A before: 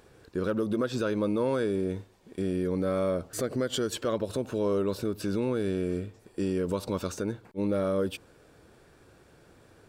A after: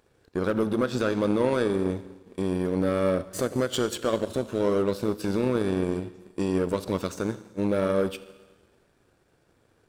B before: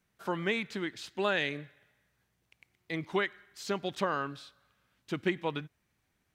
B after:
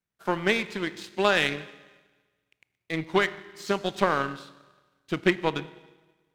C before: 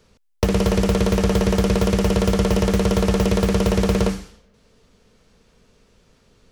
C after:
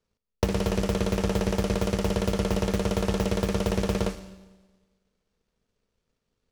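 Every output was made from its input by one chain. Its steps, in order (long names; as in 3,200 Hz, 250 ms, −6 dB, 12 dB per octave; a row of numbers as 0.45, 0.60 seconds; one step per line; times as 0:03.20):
four-comb reverb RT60 1.8 s, combs from 25 ms, DRR 10 dB
power curve on the samples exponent 1.4
loudness normalisation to −27 LKFS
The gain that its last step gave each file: +5.5, +10.5, −2.5 decibels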